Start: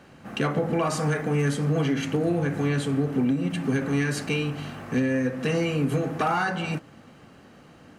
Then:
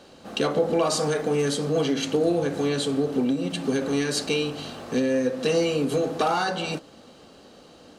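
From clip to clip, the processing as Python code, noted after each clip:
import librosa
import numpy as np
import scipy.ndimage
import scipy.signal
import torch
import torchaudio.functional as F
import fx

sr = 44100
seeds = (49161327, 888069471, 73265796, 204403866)

y = fx.graphic_eq(x, sr, hz=(125, 500, 2000, 4000, 8000), db=(-9, 6, -7, 11, 4))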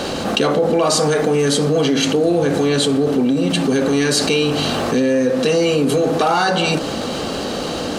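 y = fx.env_flatten(x, sr, amount_pct=70)
y = y * 10.0 ** (4.0 / 20.0)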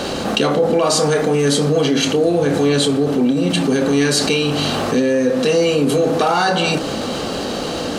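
y = fx.doubler(x, sr, ms=28.0, db=-11.5)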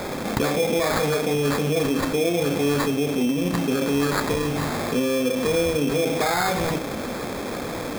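y = fx.sample_hold(x, sr, seeds[0], rate_hz=2900.0, jitter_pct=0)
y = y * 10.0 ** (-6.5 / 20.0)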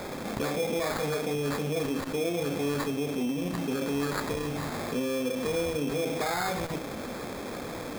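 y = fx.transformer_sat(x, sr, knee_hz=320.0)
y = y * 10.0 ** (-7.0 / 20.0)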